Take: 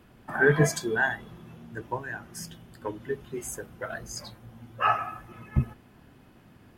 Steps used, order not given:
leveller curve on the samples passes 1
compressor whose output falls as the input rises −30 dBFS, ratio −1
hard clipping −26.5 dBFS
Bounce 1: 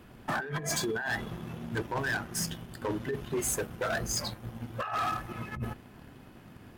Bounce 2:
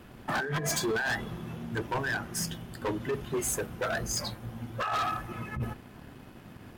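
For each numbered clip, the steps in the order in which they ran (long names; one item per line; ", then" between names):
leveller curve on the samples, then compressor whose output falls as the input rises, then hard clipping
compressor whose output falls as the input rises, then leveller curve on the samples, then hard clipping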